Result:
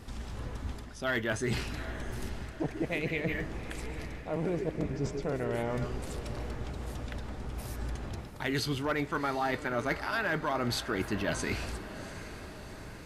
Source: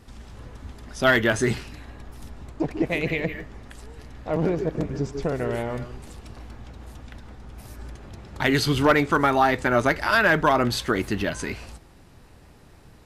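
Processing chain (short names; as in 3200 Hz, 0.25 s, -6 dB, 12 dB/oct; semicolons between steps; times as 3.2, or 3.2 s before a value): reverse; compressor 6:1, threshold -32 dBFS, peak gain reduction 16.5 dB; reverse; diffused feedback echo 0.756 s, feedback 58%, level -13 dB; gain +2.5 dB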